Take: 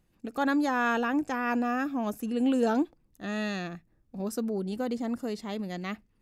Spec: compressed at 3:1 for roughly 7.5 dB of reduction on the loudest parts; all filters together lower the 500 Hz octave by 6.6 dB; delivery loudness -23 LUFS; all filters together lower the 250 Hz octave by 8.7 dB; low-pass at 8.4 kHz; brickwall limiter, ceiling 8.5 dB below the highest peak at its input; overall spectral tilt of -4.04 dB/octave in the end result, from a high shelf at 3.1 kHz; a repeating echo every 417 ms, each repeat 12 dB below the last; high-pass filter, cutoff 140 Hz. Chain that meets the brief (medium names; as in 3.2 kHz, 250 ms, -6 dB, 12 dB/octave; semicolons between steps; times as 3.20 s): high-pass 140 Hz; low-pass 8.4 kHz; peaking EQ 250 Hz -8 dB; peaking EQ 500 Hz -6 dB; treble shelf 3.1 kHz +5 dB; compression 3:1, threshold -34 dBFS; peak limiter -32 dBFS; feedback delay 417 ms, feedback 25%, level -12 dB; trim +18.5 dB